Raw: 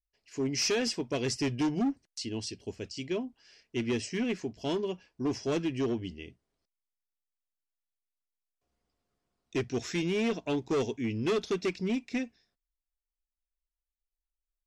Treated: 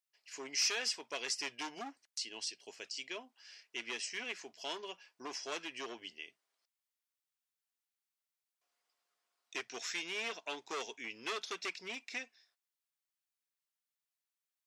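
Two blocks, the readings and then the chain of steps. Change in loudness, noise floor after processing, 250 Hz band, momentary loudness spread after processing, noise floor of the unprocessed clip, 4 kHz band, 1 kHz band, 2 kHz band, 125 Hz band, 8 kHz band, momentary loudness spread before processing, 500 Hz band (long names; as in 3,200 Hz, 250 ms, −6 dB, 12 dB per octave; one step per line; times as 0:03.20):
−7.5 dB, below −85 dBFS, −21.5 dB, 12 LU, below −85 dBFS, −1.0 dB, −4.0 dB, −1.0 dB, −32.5 dB, −1.5 dB, 10 LU, −15.0 dB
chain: high-pass filter 980 Hz 12 dB per octave
in parallel at +0.5 dB: downward compressor, threshold −48 dBFS, peak gain reduction 19 dB
on the sum: level −3 dB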